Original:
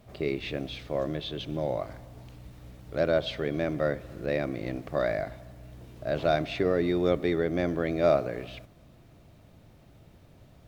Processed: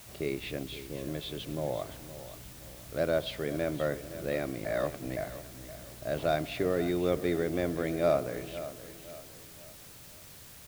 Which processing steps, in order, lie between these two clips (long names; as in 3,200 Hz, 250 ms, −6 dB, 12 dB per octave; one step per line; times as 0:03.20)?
0:00.63–0:01.08: flat-topped bell 910 Hz −15 dB
0:04.65–0:05.17: reverse
bit-depth reduction 8 bits, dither triangular
repeating echo 519 ms, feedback 39%, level −13.5 dB
level −3.5 dB